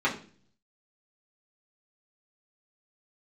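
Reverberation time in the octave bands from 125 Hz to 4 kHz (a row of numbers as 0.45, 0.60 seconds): 0.85, 0.70, 0.50, 0.35, 0.40, 0.45 seconds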